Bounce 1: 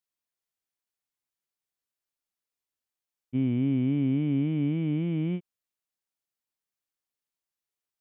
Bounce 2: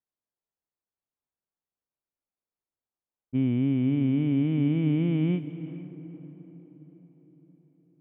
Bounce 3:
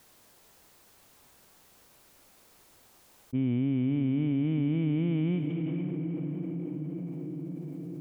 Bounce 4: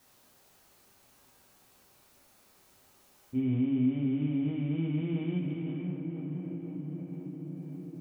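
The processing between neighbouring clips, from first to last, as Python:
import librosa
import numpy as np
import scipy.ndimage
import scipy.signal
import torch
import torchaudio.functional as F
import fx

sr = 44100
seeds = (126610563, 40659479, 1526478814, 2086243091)

y1 = fx.rider(x, sr, range_db=10, speed_s=0.5)
y1 = fx.echo_diffused(y1, sr, ms=470, feedback_pct=52, wet_db=-13.5)
y1 = fx.env_lowpass(y1, sr, base_hz=980.0, full_db=-26.5)
y1 = F.gain(torch.from_numpy(y1), 2.5).numpy()
y2 = fx.env_flatten(y1, sr, amount_pct=70)
y2 = F.gain(torch.from_numpy(y2), -4.5).numpy()
y3 = fx.rev_plate(y2, sr, seeds[0], rt60_s=0.6, hf_ratio=0.85, predelay_ms=0, drr_db=-2.5)
y3 = F.gain(torch.from_numpy(y3), -7.0).numpy()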